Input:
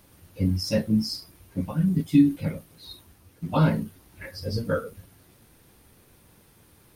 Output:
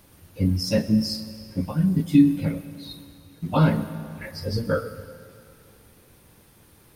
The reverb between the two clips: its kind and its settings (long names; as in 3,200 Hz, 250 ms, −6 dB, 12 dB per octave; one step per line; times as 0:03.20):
comb and all-pass reverb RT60 2.4 s, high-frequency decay 0.9×, pre-delay 70 ms, DRR 13 dB
level +2 dB